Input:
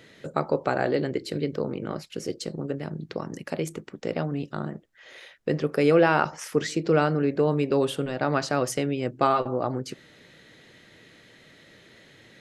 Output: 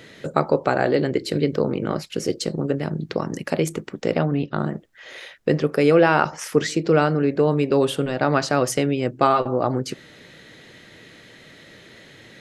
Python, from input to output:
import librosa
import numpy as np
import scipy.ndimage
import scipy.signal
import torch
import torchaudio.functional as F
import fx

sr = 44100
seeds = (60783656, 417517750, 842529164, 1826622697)

p1 = fx.lowpass(x, sr, hz=4100.0, slope=24, at=(4.18, 4.58), fade=0.02)
p2 = fx.rider(p1, sr, range_db=4, speed_s=0.5)
p3 = p1 + F.gain(torch.from_numpy(p2), 0.5).numpy()
y = F.gain(torch.from_numpy(p3), -1.0).numpy()